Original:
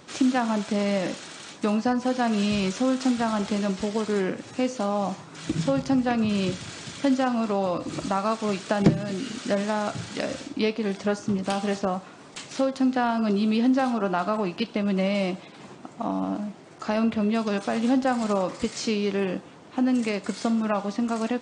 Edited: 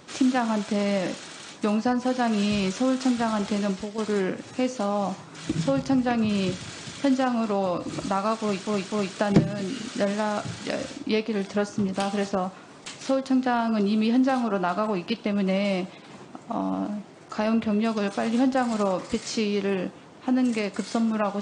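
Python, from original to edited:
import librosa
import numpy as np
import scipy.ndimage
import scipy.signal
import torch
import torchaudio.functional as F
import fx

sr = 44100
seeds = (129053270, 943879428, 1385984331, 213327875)

y = fx.edit(x, sr, fx.fade_out_to(start_s=3.73, length_s=0.25, curve='qua', floor_db=-8.5),
    fx.repeat(start_s=8.42, length_s=0.25, count=3), tone=tone)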